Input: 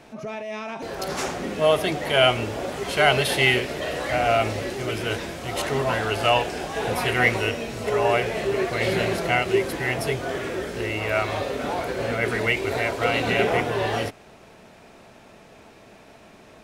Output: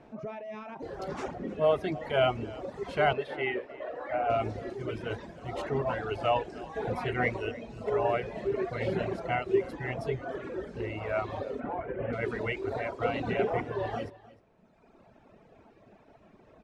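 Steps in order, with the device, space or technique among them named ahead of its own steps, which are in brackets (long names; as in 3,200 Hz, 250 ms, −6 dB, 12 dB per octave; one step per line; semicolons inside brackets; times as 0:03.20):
through cloth (low-pass filter 8,400 Hz 12 dB per octave; high-shelf EQ 2,200 Hz −17 dB)
0:11.60–0:12.13: Butterworth low-pass 2,900 Hz 36 dB per octave
reverb reduction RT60 1.8 s
0:03.13–0:04.30: three-way crossover with the lows and the highs turned down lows −16 dB, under 290 Hz, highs −16 dB, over 2,900 Hz
single-tap delay 308 ms −20 dB
level −3.5 dB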